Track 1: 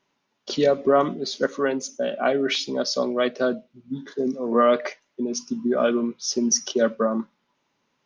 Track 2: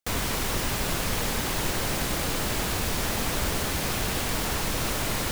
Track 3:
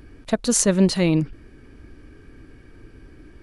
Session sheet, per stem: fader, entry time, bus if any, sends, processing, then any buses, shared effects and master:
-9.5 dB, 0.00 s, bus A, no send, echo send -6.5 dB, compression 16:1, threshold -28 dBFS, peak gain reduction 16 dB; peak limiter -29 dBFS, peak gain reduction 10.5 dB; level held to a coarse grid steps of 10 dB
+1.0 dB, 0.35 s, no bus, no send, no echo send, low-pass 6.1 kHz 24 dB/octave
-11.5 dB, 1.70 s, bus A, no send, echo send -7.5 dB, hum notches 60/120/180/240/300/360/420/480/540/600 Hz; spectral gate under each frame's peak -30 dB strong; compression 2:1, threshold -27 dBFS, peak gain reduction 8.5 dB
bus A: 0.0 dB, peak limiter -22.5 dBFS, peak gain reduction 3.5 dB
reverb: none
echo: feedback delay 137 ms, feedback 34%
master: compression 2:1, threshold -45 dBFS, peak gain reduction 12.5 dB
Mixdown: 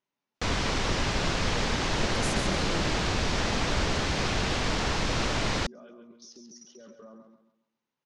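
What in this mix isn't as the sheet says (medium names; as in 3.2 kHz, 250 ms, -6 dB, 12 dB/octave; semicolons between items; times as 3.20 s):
stem 1: missing compression 16:1, threshold -28 dBFS, peak gain reduction 16 dB; master: missing compression 2:1, threshold -45 dBFS, peak gain reduction 12.5 dB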